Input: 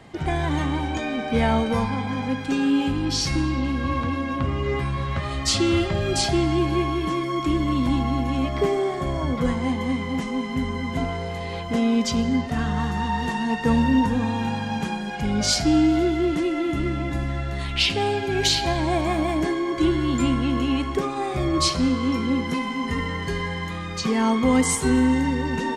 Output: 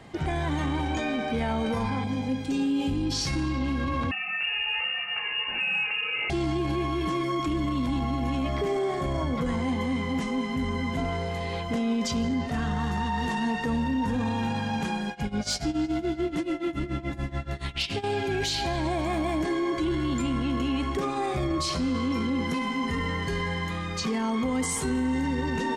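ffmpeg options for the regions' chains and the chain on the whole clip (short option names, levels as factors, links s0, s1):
-filter_complex "[0:a]asettb=1/sr,asplit=3[s0][s1][s2];[s0]atrim=end=2.044[s3];[s1]atrim=start=2.04:end=3.12,asetpts=PTS-STARTPTS,afade=t=in:d=0.004:c=qsin,afade=t=out:st=1.076:d=0.004:c=qsin,equalizer=f=1400:w=0.86:g=-11,asplit=2[s4][s5];[s5]adelay=23,volume=0.2[s6];[s4][s6]amix=inputs=2:normalize=0,atrim=end_sample=47628[s7];[s2]atrim=start=3.116[s8];[s3][s7]acrossfade=d=0.004:c1=hsin:c2=qsin[s9];[s9][s8]acrossfade=d=0.004:c1=qsin:c2=hsin,asettb=1/sr,asplit=3[s10][s11][s12];[s10]atrim=end=4.114[s13];[s11]atrim=start=4.11:end=6.3,asetpts=PTS-STARTPTS,afade=t=in:d=0.004:c=qsin,afade=t=out:st=2.186:d=0.004:c=qsin,flanger=delay=15.5:depth=3.2:speed=1.6,lowpass=f=2500:t=q:w=0.5098,lowpass=f=2500:t=q:w=0.6013,lowpass=f=2500:t=q:w=0.9,lowpass=f=2500:t=q:w=2.563,afreqshift=-2900[s14];[s12]atrim=start=6.296[s15];[s13][s14]acrossfade=d=0.004:c1=hsin:c2=qsin[s16];[s16][s15]acrossfade=d=0.004:c1=qsin:c2=hsin,asettb=1/sr,asplit=3[s17][s18][s19];[s17]atrim=end=15.094[s20];[s18]atrim=start=15.09:end=18.04,asetpts=PTS-STARTPTS,afade=t=in:d=0.004:c=qsin,afade=t=out:st=2.946:d=0.004:c=qsin,tremolo=f=7:d=0.91,volume=4.47,asoftclip=hard,volume=0.224,asplit=2[s21][s22];[s22]adelay=313,lowpass=f=2200:p=1,volume=0.106,asplit=2[s23][s24];[s24]adelay=313,lowpass=f=2200:p=1,volume=0.46,asplit=2[s25][s26];[s26]adelay=313,lowpass=f=2200:p=1,volume=0.46,asplit=2[s27][s28];[s28]adelay=313,lowpass=f=2200:p=1,volume=0.46[s29];[s21][s23][s25][s27][s29]amix=inputs=5:normalize=0,atrim=end_sample=130095[s30];[s19]atrim=start=18.036[s31];[s20][s30]acrossfade=d=0.004:c1=hsin:c2=qsin[s32];[s32][s31]acrossfade=d=0.004:c1=qsin:c2=hsin,acontrast=41,alimiter=limit=0.2:level=0:latency=1:release=10,volume=0.473"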